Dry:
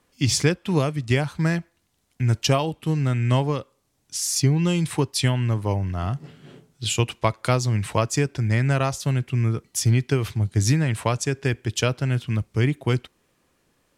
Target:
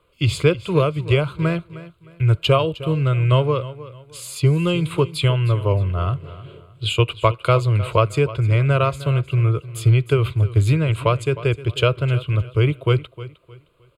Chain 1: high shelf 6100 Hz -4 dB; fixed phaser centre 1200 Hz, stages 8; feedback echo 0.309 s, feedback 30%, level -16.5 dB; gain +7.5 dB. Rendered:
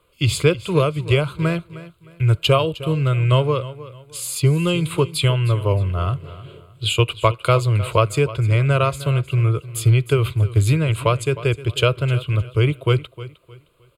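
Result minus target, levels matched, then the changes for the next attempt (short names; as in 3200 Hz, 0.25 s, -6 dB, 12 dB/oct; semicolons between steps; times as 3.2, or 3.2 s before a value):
8000 Hz band +6.5 dB
change: high shelf 6100 Hz -14 dB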